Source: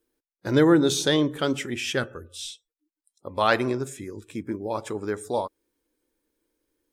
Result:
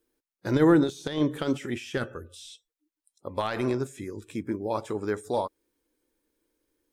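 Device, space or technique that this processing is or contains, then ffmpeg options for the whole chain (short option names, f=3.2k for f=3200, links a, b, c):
de-esser from a sidechain: -filter_complex "[0:a]asplit=2[a][b];[b]highpass=5.4k,apad=whole_len=305258[c];[a][c]sidechaincompress=threshold=-48dB:ratio=8:attack=3.5:release=21"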